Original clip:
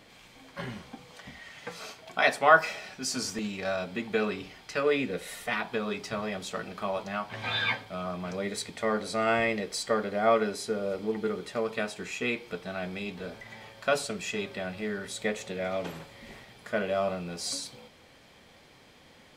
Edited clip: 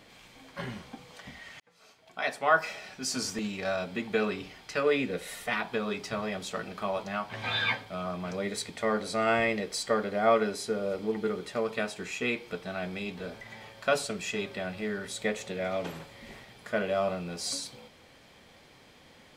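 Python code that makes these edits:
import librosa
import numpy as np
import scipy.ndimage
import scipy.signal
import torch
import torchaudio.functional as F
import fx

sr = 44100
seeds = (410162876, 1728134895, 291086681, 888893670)

y = fx.edit(x, sr, fx.fade_in_span(start_s=1.6, length_s=1.56), tone=tone)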